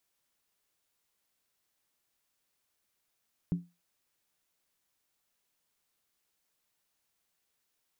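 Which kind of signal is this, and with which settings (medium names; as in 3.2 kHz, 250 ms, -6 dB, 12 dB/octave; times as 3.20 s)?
skin hit, lowest mode 174 Hz, decay 0.25 s, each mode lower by 11.5 dB, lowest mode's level -23 dB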